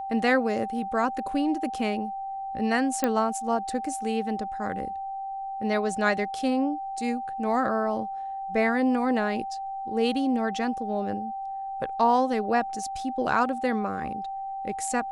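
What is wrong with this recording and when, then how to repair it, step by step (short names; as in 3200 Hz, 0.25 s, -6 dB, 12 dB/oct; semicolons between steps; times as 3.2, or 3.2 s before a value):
tone 780 Hz -31 dBFS
3.04 pop -10 dBFS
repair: de-click; notch 780 Hz, Q 30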